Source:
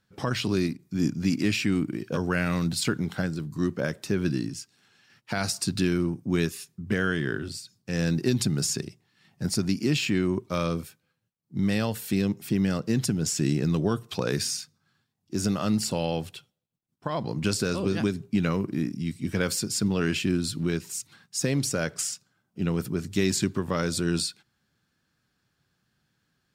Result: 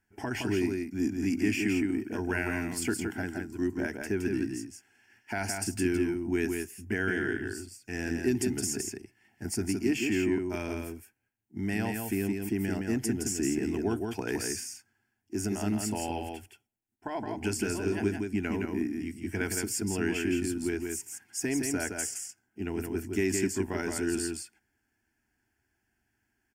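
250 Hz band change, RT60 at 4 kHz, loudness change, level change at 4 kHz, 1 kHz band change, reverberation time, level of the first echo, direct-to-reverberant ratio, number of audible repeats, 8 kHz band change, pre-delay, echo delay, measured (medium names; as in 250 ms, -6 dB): -3.0 dB, no reverb, -4.0 dB, -9.5 dB, -4.0 dB, no reverb, -4.5 dB, no reverb, 1, -2.5 dB, no reverb, 167 ms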